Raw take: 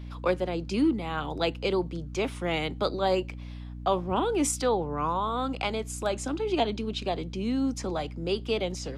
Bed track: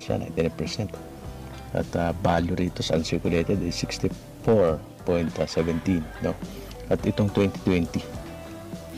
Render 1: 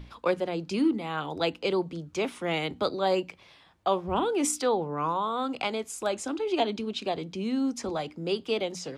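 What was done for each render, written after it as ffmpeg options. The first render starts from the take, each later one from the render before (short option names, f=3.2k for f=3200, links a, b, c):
-af "bandreject=f=60:t=h:w=6,bandreject=f=120:t=h:w=6,bandreject=f=180:t=h:w=6,bandreject=f=240:t=h:w=6,bandreject=f=300:t=h:w=6"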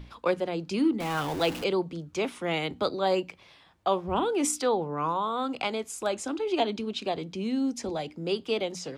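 -filter_complex "[0:a]asettb=1/sr,asplit=3[a][b][c];[a]atrim=end=1.004[d];[b]atrim=start=1:end=1.64,asetpts=PTS-STARTPTS,afade=t=in:d=0.004:c=qsin,afade=t=out:st=0.636:d=0.004:c=qsin,aeval=exprs='val(0)+0.5*0.0251*sgn(val(0))':c=same[e];[c]atrim=start=1.636[f];[d][e]acrossfade=d=0.004:c1=hsin:c2=qsin[g];[g][f]acrossfade=d=0.004:c1=qsin:c2=hsin,asettb=1/sr,asplit=3[h][i][j];[h]atrim=end=7.474[k];[i]atrim=start=7.47:end=8.16,asetpts=PTS-STARTPTS,afade=t=in:d=0.004:c=qsin,afade=t=out:st=0.686:d=0.004:c=qsin,equalizer=f=1.2k:w=2.5:g=-8[l];[j]atrim=start=8.156[m];[k][l]acrossfade=d=0.004:c1=hsin:c2=qsin[n];[n][m]acrossfade=d=0.004:c1=qsin:c2=hsin"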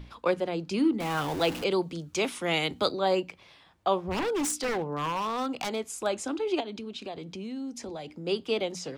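-filter_complex "[0:a]asettb=1/sr,asplit=3[a][b][c];[a]atrim=end=1.714[d];[b]atrim=start=1.71:end=2.92,asetpts=PTS-STARTPTS,afade=t=in:d=0.004:c=qsin,afade=t=out:st=1.206:d=0.004:c=qsin,highshelf=f=2.9k:g=9[e];[c]atrim=start=2.916[f];[d][e]acrossfade=d=0.004:c1=hsin:c2=qsin[g];[g][f]acrossfade=d=0.004:c1=qsin:c2=hsin,asettb=1/sr,asplit=3[h][i][j];[h]atrim=end=4.104[k];[i]atrim=start=4.1:end=5.79,asetpts=PTS-STARTPTS,afade=t=in:d=0.004:c=qsin,afade=t=out:st=1.686:d=0.004:c=qsin,aeval=exprs='0.0631*(abs(mod(val(0)/0.0631+3,4)-2)-1)':c=same[l];[j]atrim=start=5.786[m];[k][l]acrossfade=d=0.004:c1=hsin:c2=qsin[n];[n][m]acrossfade=d=0.004:c1=qsin:c2=hsin,asplit=3[o][p][q];[o]afade=t=out:st=6.59:d=0.02[r];[p]acompressor=threshold=-37dB:ratio=2.5:attack=3.2:release=140:knee=1:detection=peak,afade=t=in:st=6.59:d=0.02,afade=t=out:st=8.26:d=0.02[s];[q]afade=t=in:st=8.26:d=0.02[t];[r][s][t]amix=inputs=3:normalize=0"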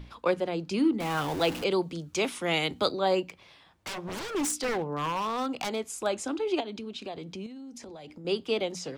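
-filter_complex "[0:a]asettb=1/sr,asplit=3[a][b][c];[a]atrim=end=3.254[d];[b]atrim=start=3.25:end=4.35,asetpts=PTS-STARTPTS,afade=t=in:d=0.004:c=qsin,afade=t=out:st=1.096:d=0.004:c=qsin,aeval=exprs='0.0282*(abs(mod(val(0)/0.0282+3,4)-2)-1)':c=same[e];[c]atrim=start=4.346[f];[d][e]acrossfade=d=0.004:c1=hsin:c2=qsin[g];[g][f]acrossfade=d=0.004:c1=qsin:c2=hsin,asettb=1/sr,asplit=3[h][i][j];[h]atrim=end=7.464[k];[i]atrim=start=7.46:end=8.25,asetpts=PTS-STARTPTS,afade=t=in:d=0.004:c=qsin,afade=t=out:st=0.786:d=0.004:c=qsin,acompressor=threshold=-40dB:ratio=10:attack=3.2:release=140:knee=1:detection=peak[l];[j]atrim=start=8.246[m];[k][l]acrossfade=d=0.004:c1=hsin:c2=qsin[n];[n][m]acrossfade=d=0.004:c1=qsin:c2=hsin"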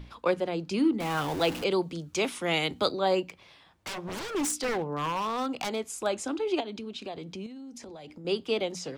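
-af anull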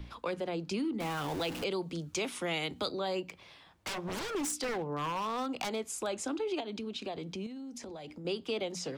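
-filter_complex "[0:a]acrossover=split=170|1900[a][b][c];[b]alimiter=limit=-23dB:level=0:latency=1:release=30[d];[a][d][c]amix=inputs=3:normalize=0,acompressor=threshold=-33dB:ratio=2.5"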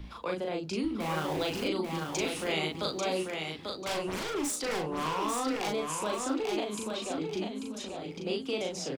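-filter_complex "[0:a]asplit=2[a][b];[b]adelay=38,volume=-2.5dB[c];[a][c]amix=inputs=2:normalize=0,aecho=1:1:841|1682|2523:0.596|0.137|0.0315"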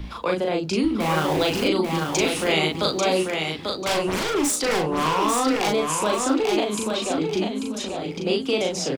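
-af "volume=10dB"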